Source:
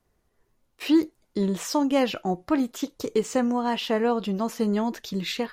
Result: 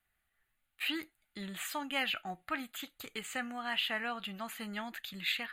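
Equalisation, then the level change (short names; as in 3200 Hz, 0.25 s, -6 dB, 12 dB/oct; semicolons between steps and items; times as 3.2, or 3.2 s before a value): bell 200 Hz -2.5 dB 2.5 oct; resonant low shelf 660 Hz -13.5 dB, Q 3; fixed phaser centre 2400 Hz, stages 4; 0.0 dB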